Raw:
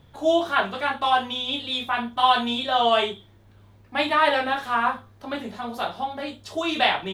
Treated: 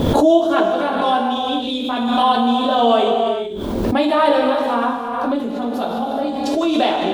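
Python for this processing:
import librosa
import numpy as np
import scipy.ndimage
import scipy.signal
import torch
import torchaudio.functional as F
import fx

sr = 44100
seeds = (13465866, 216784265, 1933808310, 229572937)

y = fx.graphic_eq_10(x, sr, hz=(125, 250, 500, 2000), db=(-7, 11, 7, -8))
y = fx.rev_gated(y, sr, seeds[0], gate_ms=460, shape='flat', drr_db=2.0)
y = fx.pre_swell(y, sr, db_per_s=28.0)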